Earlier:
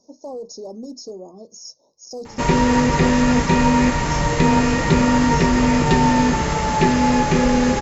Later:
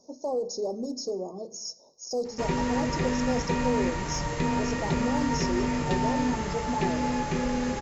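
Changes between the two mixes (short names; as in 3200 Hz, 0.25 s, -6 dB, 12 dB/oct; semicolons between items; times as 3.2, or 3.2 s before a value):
background -11.5 dB; reverb: on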